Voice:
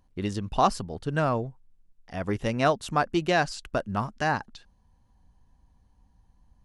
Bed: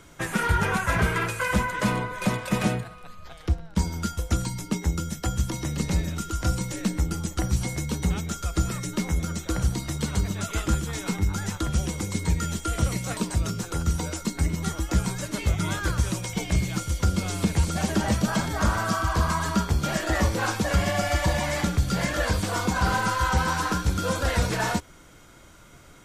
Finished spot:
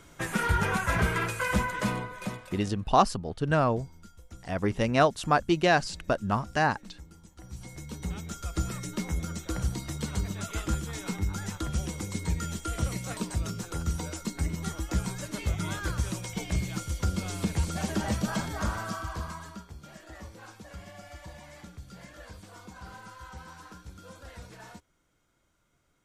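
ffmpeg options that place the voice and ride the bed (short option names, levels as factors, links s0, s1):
-filter_complex "[0:a]adelay=2350,volume=1.12[s0];[1:a]volume=5.62,afade=t=out:st=1.66:d=0.99:silence=0.0944061,afade=t=in:st=7.38:d=1.24:silence=0.125893,afade=t=out:st=18.37:d=1.27:silence=0.149624[s1];[s0][s1]amix=inputs=2:normalize=0"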